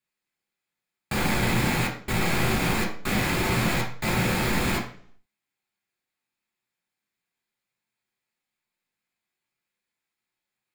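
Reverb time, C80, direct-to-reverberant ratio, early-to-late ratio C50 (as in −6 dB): 0.55 s, 12.0 dB, −2.0 dB, 8.5 dB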